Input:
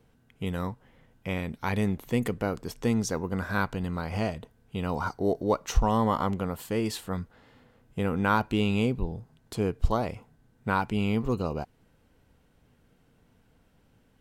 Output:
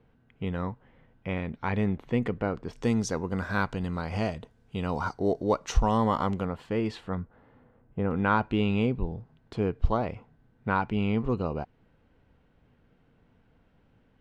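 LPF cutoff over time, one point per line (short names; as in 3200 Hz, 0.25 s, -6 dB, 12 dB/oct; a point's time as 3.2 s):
2700 Hz
from 2.73 s 7300 Hz
from 6.45 s 2900 Hz
from 7.15 s 1400 Hz
from 8.11 s 3000 Hz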